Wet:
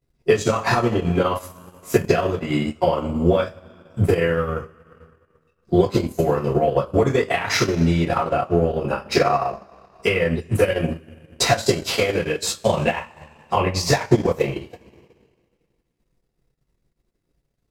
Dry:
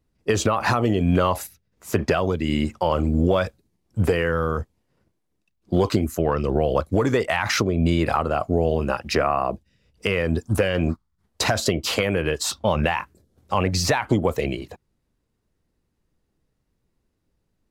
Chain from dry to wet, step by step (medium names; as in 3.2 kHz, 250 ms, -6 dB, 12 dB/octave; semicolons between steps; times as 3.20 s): two-slope reverb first 0.33 s, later 1.8 s, from -18 dB, DRR -7.5 dB; transient shaper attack +6 dB, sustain -11 dB; trim -7.5 dB